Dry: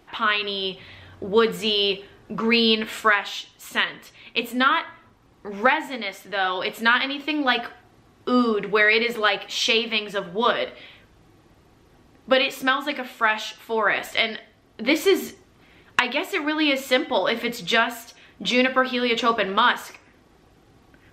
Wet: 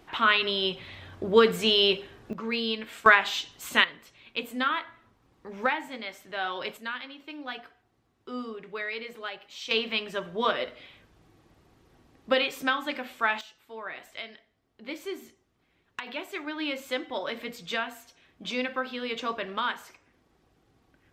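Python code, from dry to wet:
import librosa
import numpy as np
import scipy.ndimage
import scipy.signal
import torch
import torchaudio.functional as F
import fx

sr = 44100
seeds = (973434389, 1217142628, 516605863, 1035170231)

y = fx.gain(x, sr, db=fx.steps((0.0, -0.5), (2.33, -11.0), (3.06, 1.0), (3.84, -8.0), (6.77, -16.5), (9.71, -5.5), (13.41, -17.5), (16.07, -11.0)))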